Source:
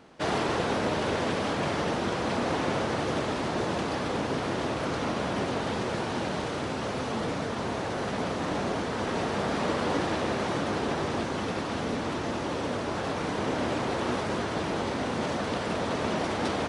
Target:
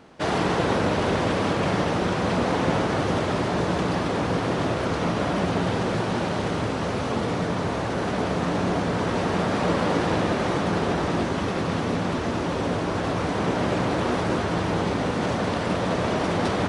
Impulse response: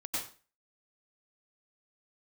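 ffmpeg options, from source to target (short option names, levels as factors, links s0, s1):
-filter_complex "[0:a]asplit=2[s0][s1];[s1]bass=f=250:g=7,treble=f=4000:g=-14[s2];[1:a]atrim=start_sample=2205,asetrate=25137,aresample=44100[s3];[s2][s3]afir=irnorm=-1:irlink=0,volume=0.266[s4];[s0][s4]amix=inputs=2:normalize=0,volume=1.26"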